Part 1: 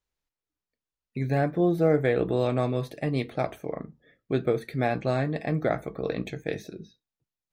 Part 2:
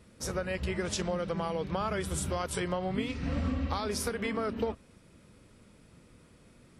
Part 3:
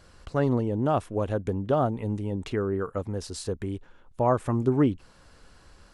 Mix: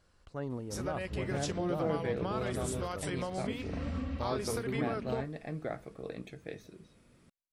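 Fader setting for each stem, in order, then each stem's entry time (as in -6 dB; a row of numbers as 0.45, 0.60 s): -12.0, -5.0, -14.0 dB; 0.00, 0.50, 0.00 s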